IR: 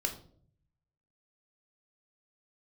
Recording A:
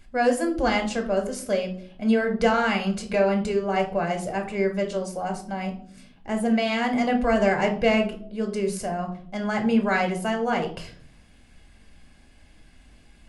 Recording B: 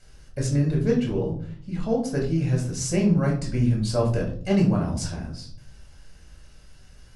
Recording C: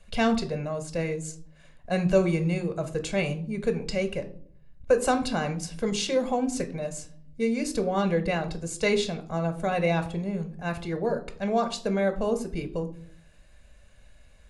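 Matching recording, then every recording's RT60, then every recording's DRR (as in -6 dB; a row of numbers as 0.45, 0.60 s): A; 0.55, 0.55, 0.55 s; 3.5, -1.5, 8.0 dB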